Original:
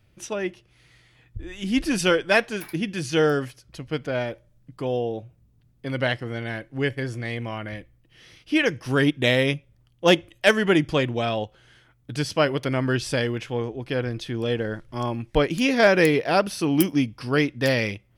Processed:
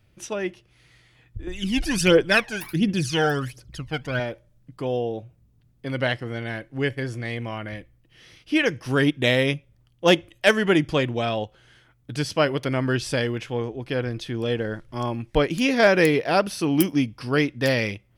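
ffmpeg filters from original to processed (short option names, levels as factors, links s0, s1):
-filter_complex "[0:a]asettb=1/sr,asplit=3[s0][s1][s2];[s0]atrim=end=1.474[s3];[s1]atrim=start=1.47:end=4.2,asetpts=PTS-STARTPTS,afade=t=in:d=0.004:c=qsin,afade=t=out:st=2.726:d=0.004:c=qsin,aphaser=in_gain=1:out_gain=1:delay=1.4:decay=0.68:speed=1.4:type=triangular[s4];[s2]atrim=start=4.196[s5];[s3][s4]acrossfade=d=0.004:c1=hsin:c2=qsin[s6];[s6][s5]acrossfade=d=0.004:c1=qsin:c2=hsin"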